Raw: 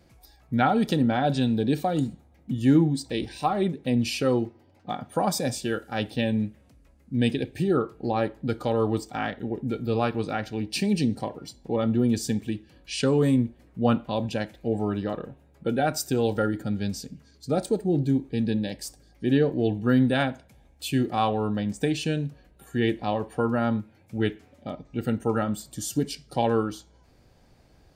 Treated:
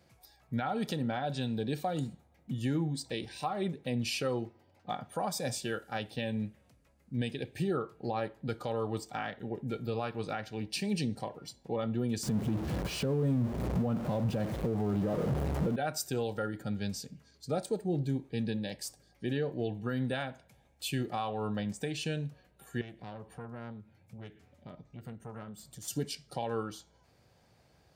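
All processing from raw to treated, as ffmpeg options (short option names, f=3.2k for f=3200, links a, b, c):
-filter_complex "[0:a]asettb=1/sr,asplit=3[a][b][c];[a]atrim=end=12.234[d];[b]atrim=start=12.23:end=15.76,asetpts=PTS-STARTPTS,afade=t=in:d=0.004:c=qsin,afade=t=out:st=3.526:d=0.004:c=qsin,aeval=exprs='val(0)+0.5*0.0531*sgn(val(0))':c=same,tiltshelf=f=890:g=10[e];[c]atrim=start=15.756[f];[d][e]acrossfade=d=0.004:c1=hsin:c2=qsin[g];[g][f]acrossfade=d=0.004:c1=qsin:c2=hsin,asettb=1/sr,asplit=3[h][i][j];[h]atrim=end=22.814[k];[i]atrim=start=22.81:end=25.88,asetpts=PTS-STARTPTS,afade=t=in:d=0.004:c=qsin,afade=t=out:st=3.066:d=0.004:c=qsin,bass=f=250:g=8,treble=f=4k:g=0,acompressor=threshold=-35dB:ratio=2.5:attack=3.2:release=140:knee=1:detection=peak,aeval=exprs='(tanh(22.4*val(0)+0.75)-tanh(0.75))/22.4':c=same[l];[j]atrim=start=25.876[m];[k][l]acrossfade=d=0.004:c1=hsin:c2=qsin[n];[n][m]acrossfade=d=0.004:c1=qsin:c2=hsin,highpass=94,equalizer=f=280:t=o:w=0.89:g=-7,alimiter=limit=-19dB:level=0:latency=1:release=275,volume=-3.5dB"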